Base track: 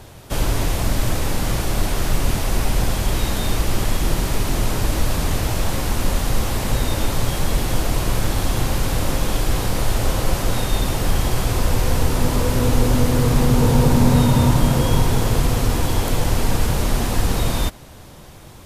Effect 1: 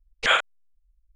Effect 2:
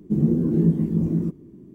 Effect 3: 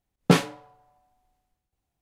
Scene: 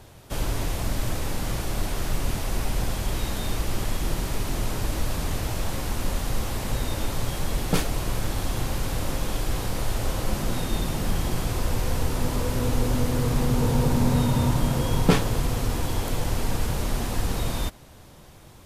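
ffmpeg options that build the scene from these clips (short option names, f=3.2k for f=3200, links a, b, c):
-filter_complex "[3:a]asplit=2[a][b];[0:a]volume=-7dB[c];[a]aemphasis=mode=production:type=50kf[d];[2:a]acompressor=threshold=-31dB:ratio=6:attack=3.2:release=140:knee=1:detection=peak[e];[d]atrim=end=2.01,asetpts=PTS-STARTPTS,volume=-8dB,afade=t=in:d=0.004:c=hsin,afade=t=out:st=2.006:d=0.004:c=hsin,adelay=7430[f];[e]atrim=end=1.74,asetpts=PTS-STARTPTS,volume=-2dB,afade=t=in:d=0.004:c=hsin,afade=t=out:st=1.736:d=0.004:c=hsin,adelay=10190[g];[b]atrim=end=2.01,asetpts=PTS-STARTPTS,volume=-2dB,afade=t=in:d=0.004:c=hsin,afade=t=out:st=2.006:d=0.004:c=hsin,adelay=14790[h];[c][f][g][h]amix=inputs=4:normalize=0"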